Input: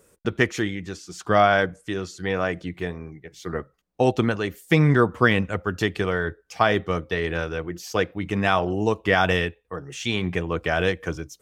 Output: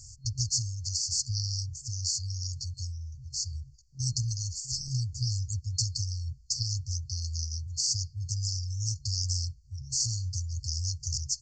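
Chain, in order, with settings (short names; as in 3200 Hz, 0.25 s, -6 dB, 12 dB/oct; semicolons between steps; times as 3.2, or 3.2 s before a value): FFT band-reject 130–4300 Hz; downsampling 16000 Hz; spectral compressor 2:1; gain +5.5 dB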